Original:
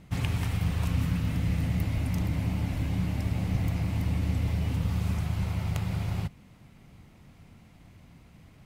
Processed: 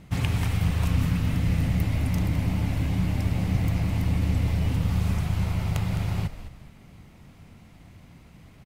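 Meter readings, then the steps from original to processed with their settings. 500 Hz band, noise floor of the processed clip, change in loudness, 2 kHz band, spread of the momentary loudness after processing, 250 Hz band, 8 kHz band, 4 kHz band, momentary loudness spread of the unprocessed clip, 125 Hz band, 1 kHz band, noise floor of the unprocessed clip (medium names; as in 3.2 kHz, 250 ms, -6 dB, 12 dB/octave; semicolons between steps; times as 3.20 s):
+4.0 dB, -51 dBFS, +3.5 dB, +4.0 dB, 3 LU, +3.5 dB, +4.0 dB, +4.0 dB, 2 LU, +3.5 dB, +4.0 dB, -55 dBFS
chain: frequency-shifting echo 210 ms, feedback 30%, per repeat -79 Hz, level -12 dB; trim +3.5 dB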